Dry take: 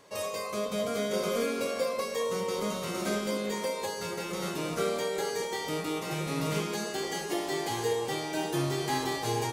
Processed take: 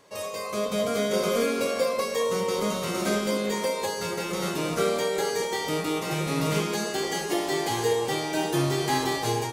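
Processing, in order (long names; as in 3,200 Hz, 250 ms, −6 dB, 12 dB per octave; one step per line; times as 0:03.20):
automatic gain control gain up to 5 dB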